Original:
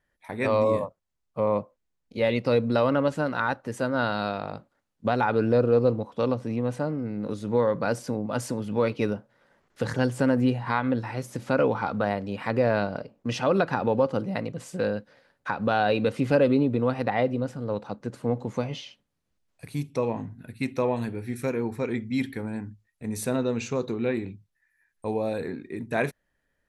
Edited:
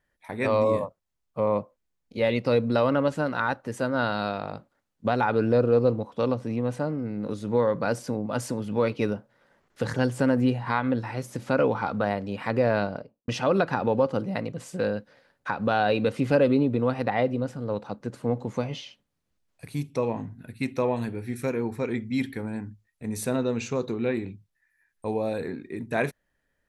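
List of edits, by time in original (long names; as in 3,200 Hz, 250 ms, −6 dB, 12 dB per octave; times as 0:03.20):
0:12.84–0:13.28: fade out and dull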